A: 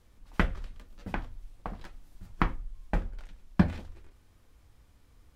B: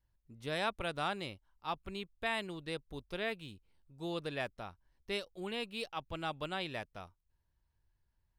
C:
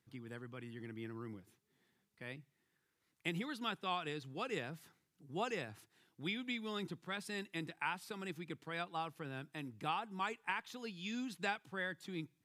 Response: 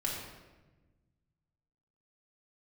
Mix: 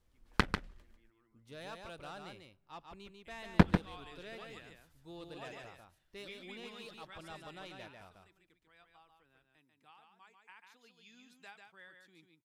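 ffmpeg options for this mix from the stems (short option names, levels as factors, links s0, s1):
-filter_complex "[0:a]bandreject=f=50:t=h:w=6,bandreject=f=100:t=h:w=6,bandreject=f=150:t=h:w=6,bandreject=f=200:t=h:w=6,aeval=exprs='0.473*(cos(1*acos(clip(val(0)/0.473,-1,1)))-cos(1*PI/2))+0.0841*(cos(7*acos(clip(val(0)/0.473,-1,1)))-cos(7*PI/2))':c=same,volume=1.06,asplit=3[s0][s1][s2];[s0]atrim=end=0.96,asetpts=PTS-STARTPTS,afade=t=out:st=0.956:d=0.004:c=hsin[s3];[s1]atrim=start=0.96:end=3.32,asetpts=PTS-STARTPTS,volume=0[s4];[s2]atrim=start=3.32,asetpts=PTS-STARTPTS,afade=t=in:d=0.004:c=hsin[s5];[s3][s4][s5]concat=n=3:v=0:a=1,asplit=2[s6][s7];[s7]volume=0.473[s8];[1:a]asoftclip=type=tanh:threshold=0.0282,adelay=1050,volume=0.316,asplit=3[s9][s10][s11];[s10]volume=0.0668[s12];[s11]volume=0.631[s13];[2:a]lowshelf=f=440:g=-10.5,volume=0.75,afade=t=in:st=3.75:d=0.22:silence=0.237137,afade=t=out:st=7.08:d=0.71:silence=0.266073,afade=t=in:st=10.39:d=0.3:silence=0.446684,asplit=2[s14][s15];[s15]volume=0.531[s16];[3:a]atrim=start_sample=2205[s17];[s12][s17]afir=irnorm=-1:irlink=0[s18];[s8][s13][s16]amix=inputs=3:normalize=0,aecho=0:1:144:1[s19];[s6][s9][s14][s18][s19]amix=inputs=5:normalize=0"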